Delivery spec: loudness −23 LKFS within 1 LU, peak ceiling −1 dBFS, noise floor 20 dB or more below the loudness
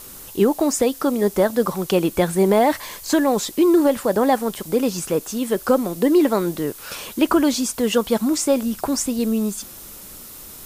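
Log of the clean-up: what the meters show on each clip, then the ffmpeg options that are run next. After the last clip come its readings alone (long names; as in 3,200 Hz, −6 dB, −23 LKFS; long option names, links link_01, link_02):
background noise floor −39 dBFS; target noise floor −40 dBFS; integrated loudness −20.0 LKFS; sample peak −6.0 dBFS; target loudness −23.0 LKFS
→ -af "afftdn=noise_reduction=6:noise_floor=-39"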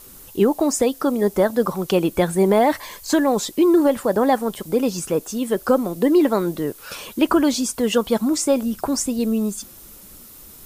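background noise floor −43 dBFS; integrated loudness −20.0 LKFS; sample peak −6.5 dBFS; target loudness −23.0 LKFS
→ -af "volume=-3dB"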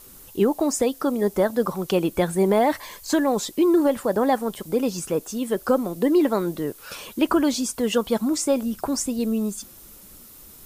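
integrated loudness −23.0 LKFS; sample peak −9.5 dBFS; background noise floor −46 dBFS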